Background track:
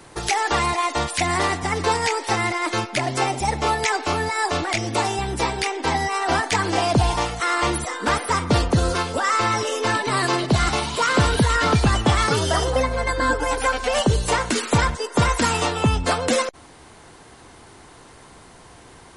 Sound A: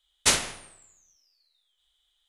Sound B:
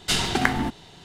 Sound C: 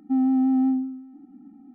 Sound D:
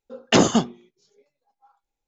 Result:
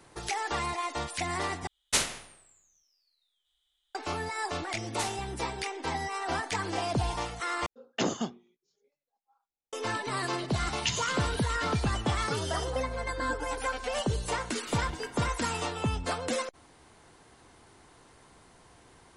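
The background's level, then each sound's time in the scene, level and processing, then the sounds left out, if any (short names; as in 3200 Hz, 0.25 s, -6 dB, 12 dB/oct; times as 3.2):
background track -11 dB
1.67 replace with A -5 dB
4.73 add A -15.5 dB
7.66 replace with D -13 dB + low shelf 66 Hz -9 dB
10.53 add D -7.5 dB + inverse Chebyshev band-stop 230–1200 Hz
14.58 add B -6.5 dB + resonator 320 Hz, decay 0.22 s, harmonics odd, mix 90%
not used: C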